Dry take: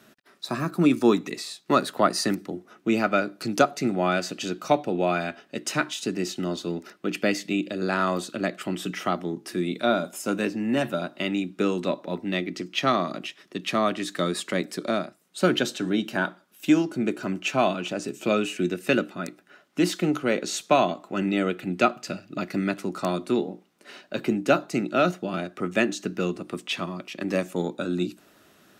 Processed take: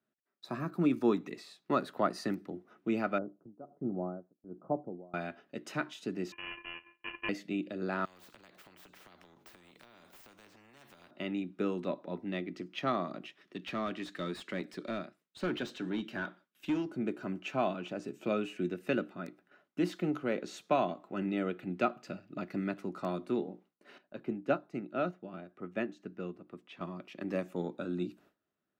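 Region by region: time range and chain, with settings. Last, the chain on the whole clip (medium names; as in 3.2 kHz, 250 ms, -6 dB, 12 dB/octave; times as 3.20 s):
3.18–5.14 s: tremolo 1.3 Hz, depth 92% + Gaussian low-pass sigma 10 samples
6.32–7.29 s: sorted samples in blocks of 64 samples + frequency inversion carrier 3.1 kHz + distance through air 200 m
8.05–11.11 s: median filter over 3 samples + compression, threshold -36 dBFS + spectrum-flattening compressor 4:1
13.41–16.86 s: peaking EQ 820 Hz -13 dB 2.6 oct + overdrive pedal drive 19 dB, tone 2.1 kHz, clips at -14 dBFS
23.98–26.81 s: treble shelf 4.3 kHz -8 dB + upward expansion, over -31 dBFS
whole clip: gate with hold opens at -43 dBFS; peaking EQ 8.9 kHz -13 dB 2.3 oct; trim -8.5 dB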